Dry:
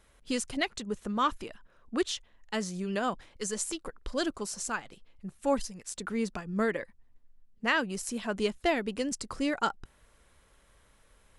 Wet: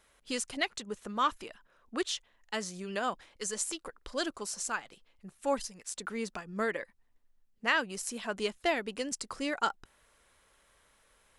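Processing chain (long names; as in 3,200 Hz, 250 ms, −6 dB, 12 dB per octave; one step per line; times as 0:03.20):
low-shelf EQ 300 Hz −11 dB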